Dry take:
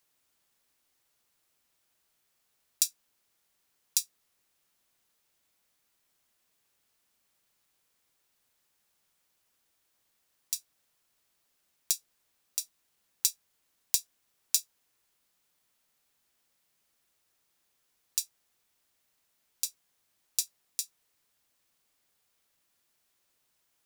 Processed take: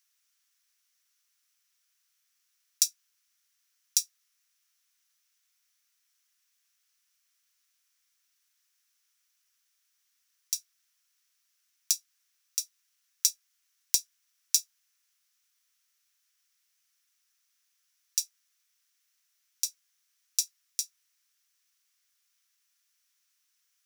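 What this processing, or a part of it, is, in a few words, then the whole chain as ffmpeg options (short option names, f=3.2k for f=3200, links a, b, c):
headphones lying on a table: -af "highpass=f=1.3k:w=0.5412,highpass=f=1.3k:w=1.3066,equalizer=f=5.8k:t=o:w=0.33:g=8,volume=-1dB"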